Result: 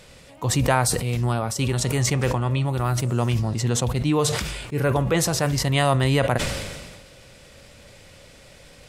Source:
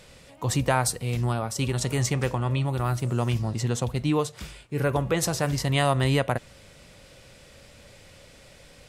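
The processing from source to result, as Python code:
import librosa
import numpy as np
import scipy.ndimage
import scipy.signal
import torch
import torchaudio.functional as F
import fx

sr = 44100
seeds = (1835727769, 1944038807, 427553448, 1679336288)

y = fx.sustainer(x, sr, db_per_s=37.0)
y = F.gain(torch.from_numpy(y), 2.5).numpy()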